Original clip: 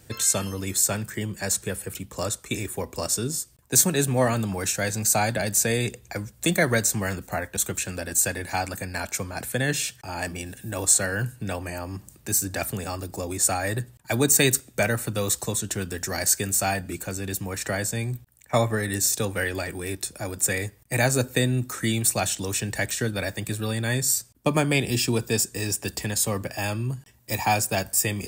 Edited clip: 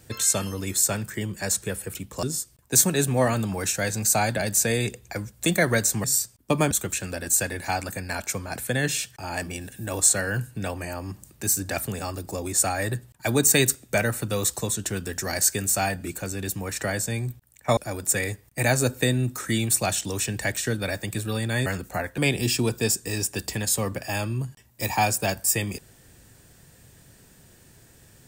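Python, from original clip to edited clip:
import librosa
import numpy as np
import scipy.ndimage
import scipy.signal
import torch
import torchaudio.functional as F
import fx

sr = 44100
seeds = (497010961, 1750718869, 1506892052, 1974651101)

y = fx.edit(x, sr, fx.cut(start_s=2.23, length_s=1.0),
    fx.swap(start_s=7.04, length_s=0.52, other_s=24.0, other_length_s=0.67),
    fx.cut(start_s=18.62, length_s=1.49), tone=tone)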